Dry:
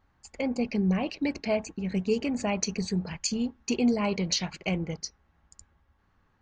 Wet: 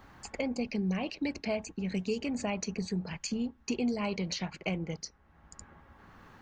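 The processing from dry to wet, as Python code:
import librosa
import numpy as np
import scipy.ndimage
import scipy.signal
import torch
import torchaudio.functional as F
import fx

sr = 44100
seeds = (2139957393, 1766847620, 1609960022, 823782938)

y = fx.band_squash(x, sr, depth_pct=70)
y = y * librosa.db_to_amplitude(-5.0)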